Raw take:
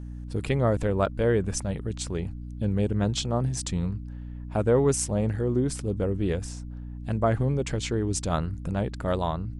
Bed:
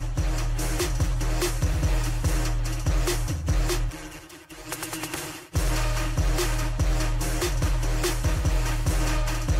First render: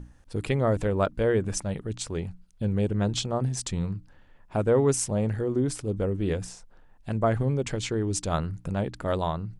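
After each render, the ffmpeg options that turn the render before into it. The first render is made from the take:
-af "bandreject=f=60:t=h:w=6,bandreject=f=120:t=h:w=6,bandreject=f=180:t=h:w=6,bandreject=f=240:t=h:w=6,bandreject=f=300:t=h:w=6"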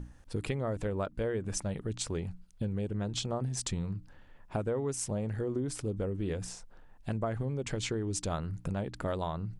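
-af "acompressor=threshold=0.0316:ratio=6"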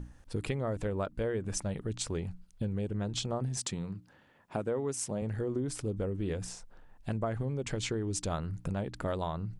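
-filter_complex "[0:a]asettb=1/sr,asplit=3[s0][s1][s2];[s0]atrim=end=3.574[s3];[s1]atrim=start=3.57:end=5.22,asetpts=PTS-STARTPTS,afade=t=in:d=0.004:c=qsin,afade=t=out:st=1.646:d=0.004:c=qsin,highpass=140[s4];[s2]atrim=start=5.216[s5];[s3][s4]acrossfade=d=0.004:c1=hsin:c2=qsin[s6];[s6][s5]acrossfade=d=0.004:c1=qsin:c2=hsin"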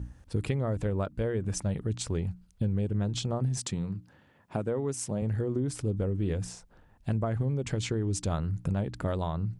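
-af "highpass=49,lowshelf=f=200:g=8.5"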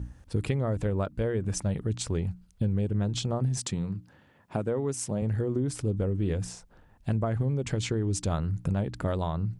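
-af "volume=1.19"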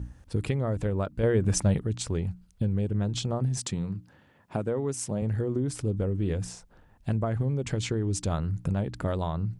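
-filter_complex "[0:a]asplit=3[s0][s1][s2];[s0]atrim=end=1.232[s3];[s1]atrim=start=1.228:end=1.792,asetpts=PTS-STARTPTS,volume=1.88[s4];[s2]atrim=start=1.788[s5];[s3][s4]acrossfade=d=0.004:c1=hsin:c2=hsin[s6];[s6][s5]acrossfade=d=0.004:c1=hsin:c2=hsin"

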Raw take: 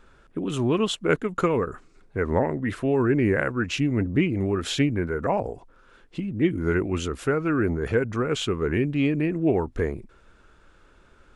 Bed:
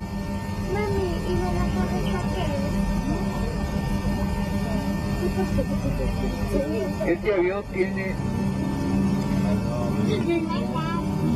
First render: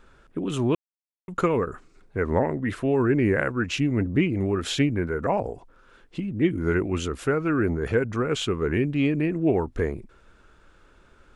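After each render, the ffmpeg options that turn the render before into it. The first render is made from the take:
-filter_complex "[0:a]asplit=3[s0][s1][s2];[s0]atrim=end=0.75,asetpts=PTS-STARTPTS,afade=t=out:st=0.746:d=0.004:c=hsin[s3];[s1]atrim=start=0.75:end=1.28,asetpts=PTS-STARTPTS,volume=0[s4];[s2]atrim=start=1.28,asetpts=PTS-STARTPTS,afade=t=in:d=0.004:c=hsin[s5];[s3][s4][s5]concat=n=3:v=0:a=1"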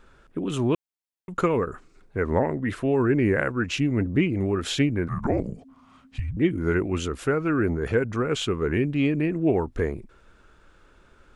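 -filter_complex "[0:a]asettb=1/sr,asplit=3[s0][s1][s2];[s0]atrim=end=5.084[s3];[s1]atrim=start=5.08:end=6.37,asetpts=PTS-STARTPTS,afade=t=in:d=0.004:c=qsin,afade=t=out:st=1.286:d=0.004:c=qsin,afreqshift=-280[s4];[s2]atrim=start=6.366[s5];[s3][s4]acrossfade=d=0.004:c1=hsin:c2=qsin[s6];[s6][s5]acrossfade=d=0.004:c1=qsin:c2=hsin"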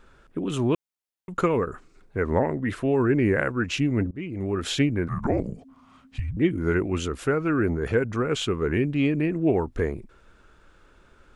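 -filter_complex "[0:a]asplit=2[s0][s1];[s0]atrim=end=4.11,asetpts=PTS-STARTPTS,afade=t=out:st=4.106:d=0.004:c=hsin:silence=0.0630957[s2];[s1]atrim=start=4.11,asetpts=PTS-STARTPTS,afade=t=in:d=0.53:silence=0.0630957[s3];[s2][s3]concat=n=2:v=0:a=1"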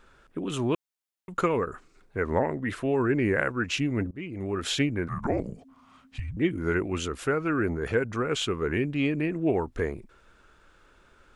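-af "lowshelf=f=490:g=-5"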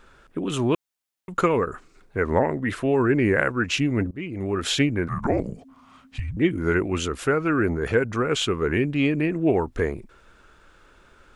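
-af "volume=1.68"

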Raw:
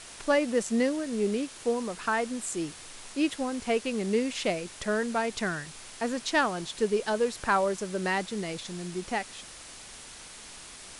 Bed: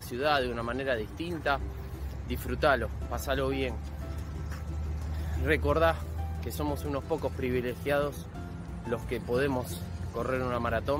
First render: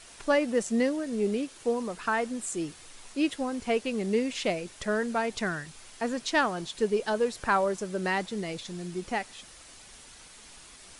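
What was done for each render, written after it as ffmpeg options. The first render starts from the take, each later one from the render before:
-af "afftdn=nr=6:nf=-46"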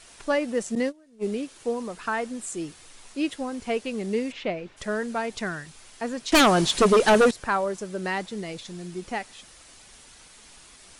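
-filter_complex "[0:a]asettb=1/sr,asplit=3[s0][s1][s2];[s0]atrim=end=0.754[s3];[s1]atrim=start=0.75:end=1.27,asetpts=PTS-STARTPTS,afade=t=in:d=0.004:c=qsin,afade=t=out:st=0.516:d=0.004:c=qsin,agate=range=0.0708:threshold=0.0447:ratio=16:release=100:detection=peak[s4];[s2]atrim=start=1.266[s5];[s3][s4]acrossfade=d=0.004:c1=hsin:c2=qsin[s6];[s6][s5]acrossfade=d=0.004:c1=qsin:c2=hsin,asplit=3[s7][s8][s9];[s7]afade=t=out:st=4.31:d=0.02[s10];[s8]lowpass=2800,afade=t=in:st=4.31:d=0.02,afade=t=out:st=4.76:d=0.02[s11];[s9]afade=t=in:st=4.76:d=0.02[s12];[s10][s11][s12]amix=inputs=3:normalize=0,asettb=1/sr,asplit=3[s13][s14][s15];[s13]atrim=end=6.324[s16];[s14]atrim=start=6.32:end=7.31,asetpts=PTS-STARTPTS,afade=t=in:d=0.004:c=qsin,afade=t=out:st=0.986:d=0.004:c=qsin,aeval=exprs='0.237*sin(PI/2*3.55*val(0)/0.237)':c=same[s17];[s15]atrim=start=7.306[s18];[s16][s17]acrossfade=d=0.004:c1=hsin:c2=qsin[s19];[s19][s18]acrossfade=d=0.004:c1=qsin:c2=hsin"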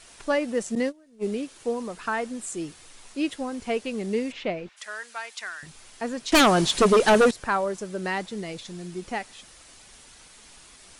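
-filter_complex "[0:a]asettb=1/sr,asplit=3[s0][s1][s2];[s0]atrim=end=4.694[s3];[s1]atrim=start=4.69:end=5.63,asetpts=PTS-STARTPTS,afade=t=in:d=0.004:c=qsin,afade=t=out:st=0.936:d=0.004:c=qsin,highpass=1300[s4];[s2]atrim=start=5.626[s5];[s3][s4]acrossfade=d=0.004:c1=hsin:c2=qsin[s6];[s6][s5]acrossfade=d=0.004:c1=qsin:c2=hsin"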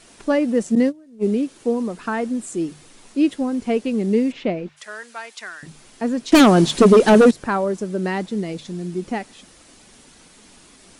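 -af "equalizer=f=240:t=o:w=2.1:g=11,bandreject=f=50:t=h:w=6,bandreject=f=100:t=h:w=6,bandreject=f=150:t=h:w=6"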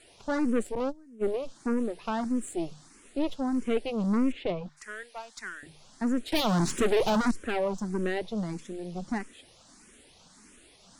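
-filter_complex "[0:a]aeval=exprs='(tanh(10*val(0)+0.75)-tanh(0.75))/10':c=same,asplit=2[s0][s1];[s1]afreqshift=1.6[s2];[s0][s2]amix=inputs=2:normalize=1"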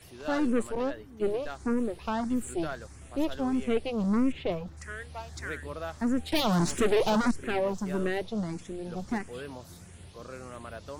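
-filter_complex "[1:a]volume=0.237[s0];[0:a][s0]amix=inputs=2:normalize=0"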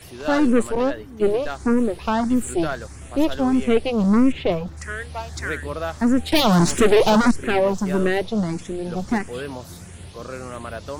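-af "volume=2.99"

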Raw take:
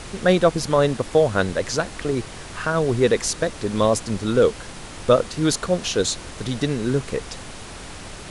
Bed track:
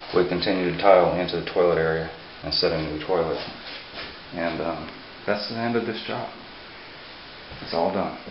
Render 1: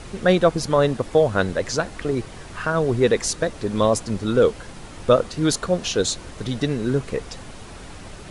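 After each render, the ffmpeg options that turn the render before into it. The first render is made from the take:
-af "afftdn=nr=6:nf=-38"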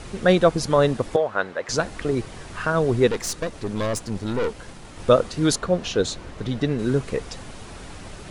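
-filter_complex "[0:a]asettb=1/sr,asplit=3[s0][s1][s2];[s0]atrim=end=1.164[s3];[s1]atrim=start=1.16:end=1.69,asetpts=PTS-STARTPTS,afade=t=in:d=0.004:c=qsin,afade=t=out:st=0.526:d=0.004:c=qsin,bandpass=f=1200:t=q:w=0.81[s4];[s2]atrim=start=1.686[s5];[s3][s4]acrossfade=d=0.004:c1=hsin:c2=qsin[s6];[s6][s5]acrossfade=d=0.004:c1=qsin:c2=hsin,asettb=1/sr,asplit=3[s7][s8][s9];[s7]atrim=end=3.074[s10];[s8]atrim=start=3.07:end=4.99,asetpts=PTS-STARTPTS,afade=t=in:d=0.004:c=qsin,afade=t=out:st=1.916:d=0.004:c=qsin,aeval=exprs='(tanh(11.2*val(0)+0.55)-tanh(0.55))/11.2':c=same[s11];[s9]atrim=start=4.986[s12];[s10][s11]acrossfade=d=0.004:c1=hsin:c2=qsin[s13];[s13][s12]acrossfade=d=0.004:c1=qsin:c2=hsin,asettb=1/sr,asplit=3[s14][s15][s16];[s14]atrim=end=5.564[s17];[s15]atrim=start=5.56:end=6.79,asetpts=PTS-STARTPTS,afade=t=in:d=0.004:c=qsin,afade=t=out:st=1.226:d=0.004:c=qsin,highshelf=f=5100:g=-11.5[s18];[s16]atrim=start=6.786[s19];[s17][s18]acrossfade=d=0.004:c1=hsin:c2=qsin[s20];[s20][s19]acrossfade=d=0.004:c1=qsin:c2=hsin"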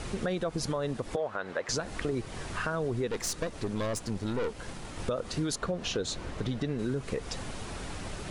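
-af "alimiter=limit=0.178:level=0:latency=1:release=99,acompressor=threshold=0.0316:ratio=3"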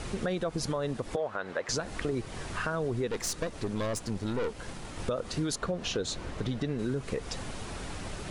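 -af anull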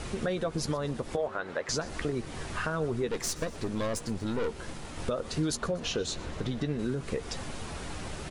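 -filter_complex "[0:a]asplit=2[s0][s1];[s1]adelay=13,volume=0.282[s2];[s0][s2]amix=inputs=2:normalize=0,asplit=5[s3][s4][s5][s6][s7];[s4]adelay=121,afreqshift=-79,volume=0.106[s8];[s5]adelay=242,afreqshift=-158,volume=0.055[s9];[s6]adelay=363,afreqshift=-237,volume=0.0285[s10];[s7]adelay=484,afreqshift=-316,volume=0.015[s11];[s3][s8][s9][s10][s11]amix=inputs=5:normalize=0"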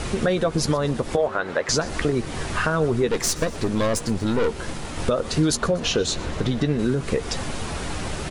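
-af "volume=2.99"

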